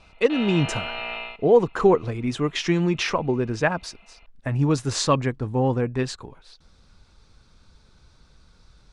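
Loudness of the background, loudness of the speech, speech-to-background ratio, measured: -32.0 LUFS, -23.0 LUFS, 9.0 dB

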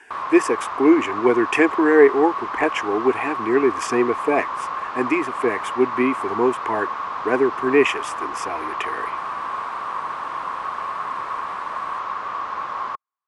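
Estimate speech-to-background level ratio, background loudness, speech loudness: 7.0 dB, -27.5 LUFS, -20.5 LUFS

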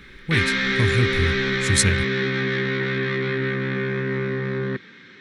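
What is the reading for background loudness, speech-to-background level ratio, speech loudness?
-23.0 LUFS, -1.0 dB, -24.0 LUFS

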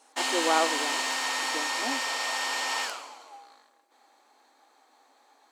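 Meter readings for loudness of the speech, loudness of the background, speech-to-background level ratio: -31.5 LUFS, -28.0 LUFS, -3.5 dB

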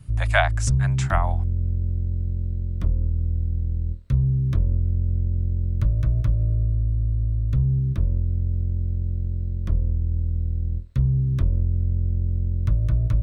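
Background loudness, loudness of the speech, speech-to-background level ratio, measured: -24.5 LUFS, -26.0 LUFS, -1.5 dB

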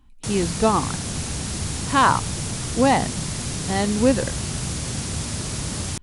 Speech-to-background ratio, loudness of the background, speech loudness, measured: 5.0 dB, -27.0 LUFS, -22.0 LUFS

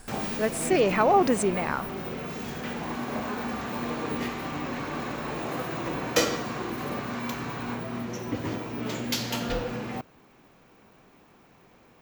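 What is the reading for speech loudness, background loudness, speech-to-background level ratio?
-24.5 LUFS, -31.5 LUFS, 7.0 dB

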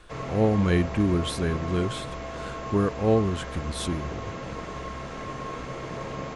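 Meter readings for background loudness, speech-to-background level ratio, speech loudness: -35.5 LUFS, 9.5 dB, -26.0 LUFS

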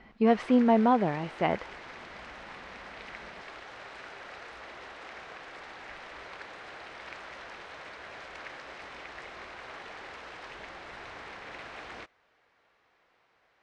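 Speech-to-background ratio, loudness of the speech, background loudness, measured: 18.5 dB, -25.5 LUFS, -44.0 LUFS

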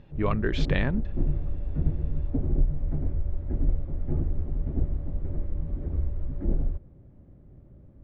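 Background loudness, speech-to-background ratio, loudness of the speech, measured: -31.5 LUFS, 1.5 dB, -30.0 LUFS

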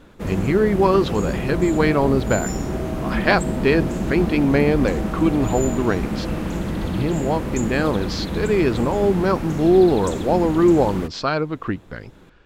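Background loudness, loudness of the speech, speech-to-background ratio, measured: -26.0 LUFS, -20.5 LUFS, 5.5 dB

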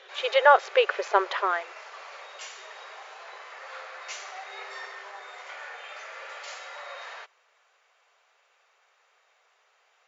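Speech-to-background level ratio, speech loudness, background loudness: 18.0 dB, -23.0 LUFS, -41.0 LUFS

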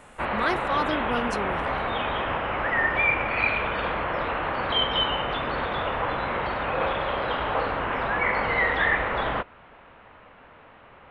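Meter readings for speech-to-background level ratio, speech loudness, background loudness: -4.5 dB, -30.0 LUFS, -25.5 LUFS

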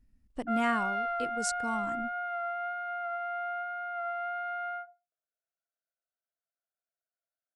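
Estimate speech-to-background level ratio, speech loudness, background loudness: -1.0 dB, -35.0 LUFS, -34.0 LUFS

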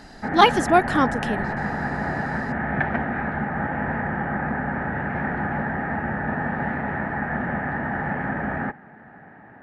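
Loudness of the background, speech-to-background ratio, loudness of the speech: -26.5 LUFS, 6.5 dB, -20.0 LUFS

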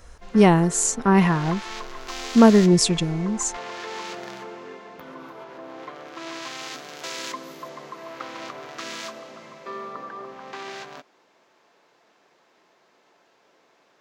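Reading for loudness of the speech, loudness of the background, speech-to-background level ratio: -19.0 LUFS, -36.0 LUFS, 17.0 dB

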